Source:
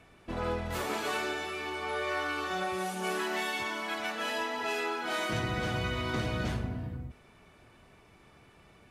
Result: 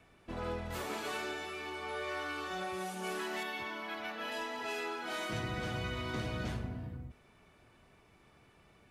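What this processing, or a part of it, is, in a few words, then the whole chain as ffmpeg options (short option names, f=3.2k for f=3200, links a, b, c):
one-band saturation: -filter_complex "[0:a]asettb=1/sr,asplit=3[a][b][c];[a]atrim=end=3.434[d];[b]atrim=start=3.43:end=4.32,asetpts=PTS-STARTPTS,afade=t=in:d=0.004:c=qsin,afade=t=out:st=0.886:d=0.004:c=qsin,equalizer=f=8k:t=o:w=1:g=-13[e];[c]atrim=start=4.316[f];[d][e]acrossfade=d=0.004:c1=hsin:c2=qsin[g];[g][f]acrossfade=d=0.004:c1=qsin:c2=hsin,acrossover=split=510|2100[h][i][j];[i]asoftclip=type=tanh:threshold=-30dB[k];[h][k][j]amix=inputs=3:normalize=0,volume=-5dB"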